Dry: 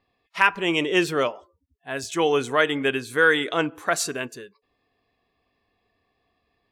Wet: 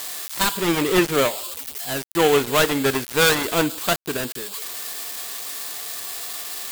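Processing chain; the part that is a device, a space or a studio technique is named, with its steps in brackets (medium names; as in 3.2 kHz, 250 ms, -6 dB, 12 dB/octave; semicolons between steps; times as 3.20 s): budget class-D amplifier (dead-time distortion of 0.25 ms; zero-crossing glitches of -18 dBFS); trim +4.5 dB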